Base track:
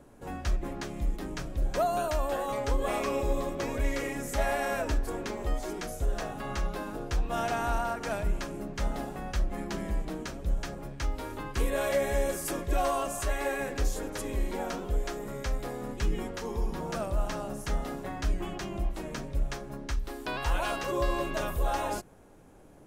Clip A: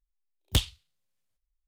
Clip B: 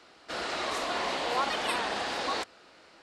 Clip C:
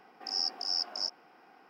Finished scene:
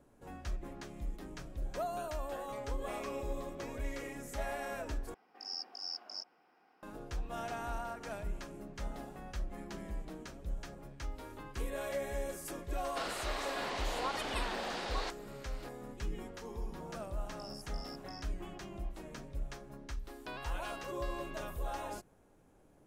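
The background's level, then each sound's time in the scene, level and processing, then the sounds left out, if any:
base track -10 dB
5.14 s: replace with C -10 dB
12.67 s: add B -8 dB + recorder AGC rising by 17 dB/s
17.13 s: add C -12.5 dB + compression, threshold -35 dBFS
not used: A

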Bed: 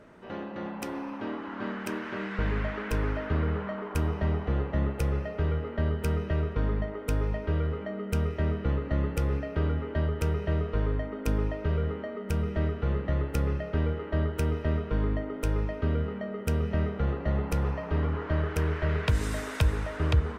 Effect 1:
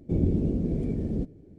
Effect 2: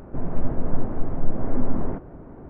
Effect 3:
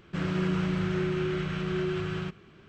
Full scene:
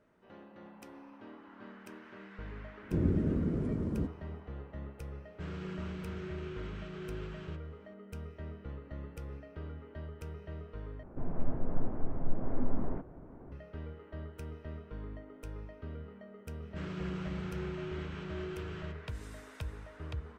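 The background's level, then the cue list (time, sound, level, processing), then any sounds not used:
bed -16 dB
2.82 s: add 1 -4.5 dB + high-pass 50 Hz
5.26 s: add 3 -13.5 dB
11.03 s: replace with 2 -9 dB
16.62 s: add 3 -11 dB

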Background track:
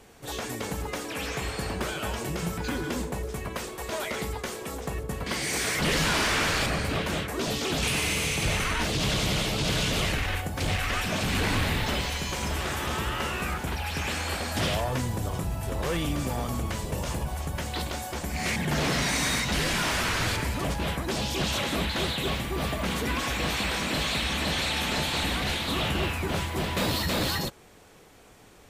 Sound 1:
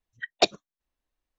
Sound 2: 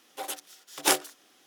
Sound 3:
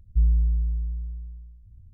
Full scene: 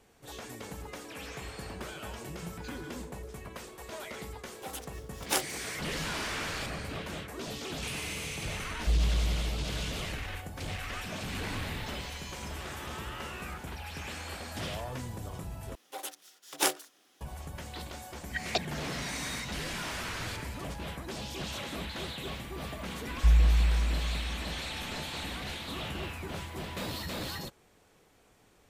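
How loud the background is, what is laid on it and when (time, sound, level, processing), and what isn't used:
background track -10 dB
4.45 s: add 2 -6.5 dB
8.71 s: add 3 -6.5 dB
15.75 s: replace with 2 -4.5 dB
18.13 s: add 1 -7 dB + three bands compressed up and down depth 70%
23.08 s: add 3 -1.5 dB

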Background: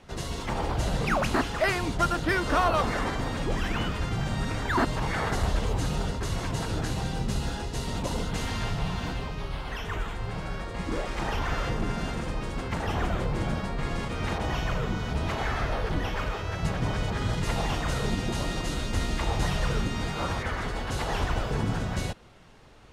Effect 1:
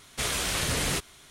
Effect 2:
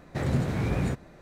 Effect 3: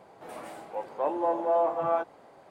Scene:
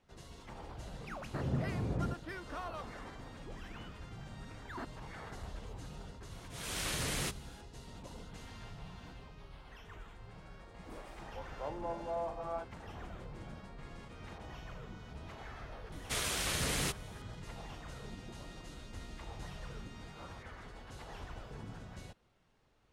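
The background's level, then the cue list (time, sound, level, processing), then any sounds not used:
background -19 dB
1.19 s: add 2 -8.5 dB + low-pass 1 kHz
6.31 s: add 1 -8.5 dB + slow attack 304 ms
10.61 s: add 3 -13 dB
15.92 s: add 1 -6.5 dB

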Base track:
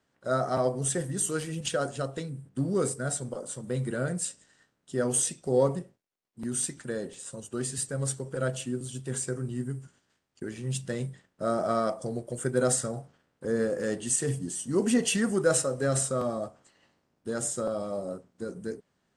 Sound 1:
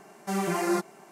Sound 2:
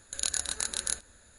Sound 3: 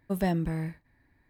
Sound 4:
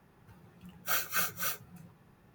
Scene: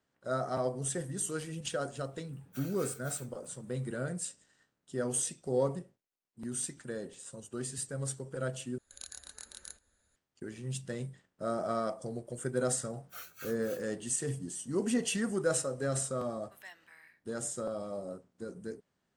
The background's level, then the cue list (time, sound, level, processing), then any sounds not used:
base track -6 dB
1.68 s: add 4 -8 dB + compression, threshold -38 dBFS
8.78 s: replace with 2 -16.5 dB + band-stop 2.6 kHz, Q 20
12.25 s: add 4 -16 dB + vibrato 2.9 Hz 76 cents
16.41 s: add 3 -13.5 dB + resonant high-pass 1.6 kHz, resonance Q 1.7
not used: 1

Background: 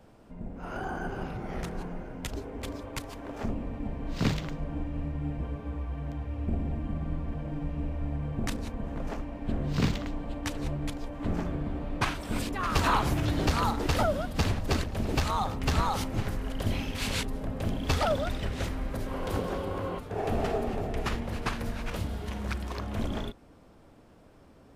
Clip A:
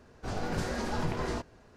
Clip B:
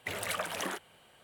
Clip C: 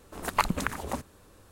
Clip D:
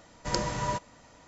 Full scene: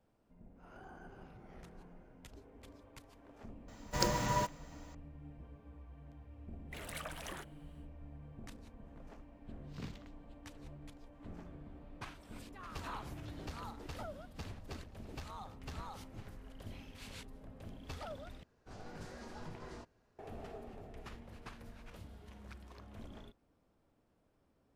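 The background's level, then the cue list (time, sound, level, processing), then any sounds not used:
background -19 dB
3.68 s: add D -2.5 dB + block-companded coder 5-bit
6.66 s: add B -10.5 dB, fades 0.10 s
18.43 s: replace with A -16 dB
not used: C

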